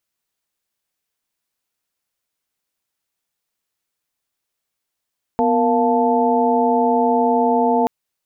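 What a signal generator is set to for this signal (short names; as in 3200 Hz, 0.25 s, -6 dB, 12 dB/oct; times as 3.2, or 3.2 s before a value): chord B3/A#4/F5/A5 sine, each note -19 dBFS 2.48 s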